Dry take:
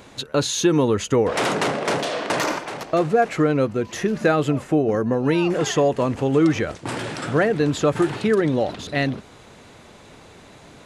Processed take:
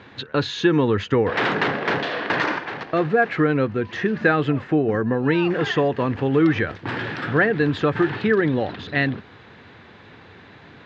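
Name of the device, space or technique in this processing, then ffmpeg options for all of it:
guitar cabinet: -af "highpass=80,equalizer=frequency=97:width_type=q:width=4:gain=6,equalizer=frequency=610:width_type=q:width=4:gain=-6,equalizer=frequency=1700:width_type=q:width=4:gain=8,lowpass=frequency=4000:width=0.5412,lowpass=frequency=4000:width=1.3066"

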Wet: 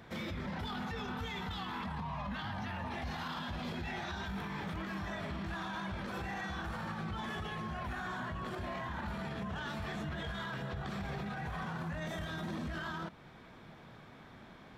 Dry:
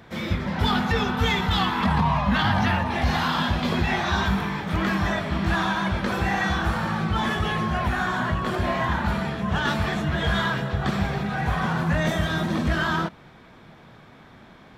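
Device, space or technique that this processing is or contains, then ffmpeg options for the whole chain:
stacked limiters: -filter_complex "[0:a]asettb=1/sr,asplit=3[link_01][link_02][link_03];[link_01]atrim=end=3.704[link_04];[link_02]atrim=start=3.7:end=4.42,asetpts=PTS-STARTPTS,afade=type=in:duration=0.004:curve=qsin,afade=type=out:start_time=0.716:duration=0.004:curve=qsin,bandreject=frequency=1100:width=8.1[link_05];[link_03]atrim=start=4.416[link_06];[link_04][link_05]acrossfade=duration=0.004:curve1=hsin:curve2=qsin[link_07];[link_07][link_06]acrossfade=duration=0.004:curve1=qsin:curve2=hsin,alimiter=limit=-18dB:level=0:latency=1:release=75,alimiter=limit=-21dB:level=0:latency=1:release=301,alimiter=level_in=2.5dB:limit=-24dB:level=0:latency=1:release=28,volume=-2.5dB,volume=-5.5dB"

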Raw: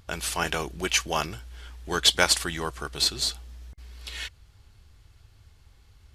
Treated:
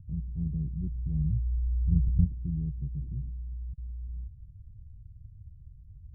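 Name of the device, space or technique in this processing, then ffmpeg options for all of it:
the neighbour's flat through the wall: -filter_complex "[0:a]asettb=1/sr,asplit=3[link_01][link_02][link_03];[link_01]atrim=end=0.774[link_04];[link_02]atrim=start=0.77:end=2.26,asetpts=PTS-STARTPTS,afade=type=in:duration=0.004:curve=qsin,afade=type=out:start_time=1.486:duration=0.004:curve=qsin,asubboost=boost=7.5:cutoff=170[link_05];[link_03]atrim=start=2.256[link_06];[link_04][link_05]acrossfade=duration=0.004:curve1=hsin:curve2=qsin[link_07];[link_07][link_06]acrossfade=duration=0.004:curve1=qsin:curve2=hsin,lowpass=frequency=160:width=0.5412,lowpass=frequency=160:width=1.3066,equalizer=frequency=150:width_type=o:width=0.71:gain=5.5,volume=6dB"

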